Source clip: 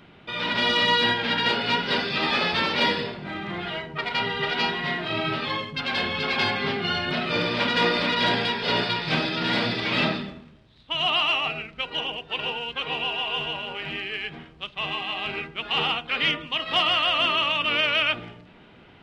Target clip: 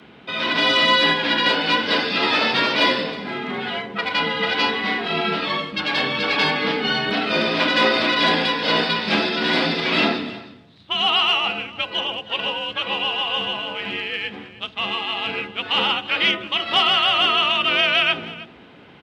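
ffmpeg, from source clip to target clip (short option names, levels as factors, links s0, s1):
-af "afreqshift=50,aecho=1:1:315:0.126,volume=1.68"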